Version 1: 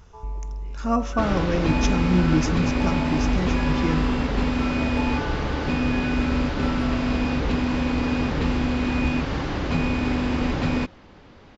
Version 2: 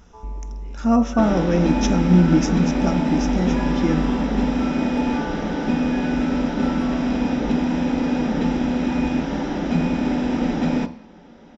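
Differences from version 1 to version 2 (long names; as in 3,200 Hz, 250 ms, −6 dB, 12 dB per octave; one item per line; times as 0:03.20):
second sound −4.0 dB
reverb: on, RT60 0.45 s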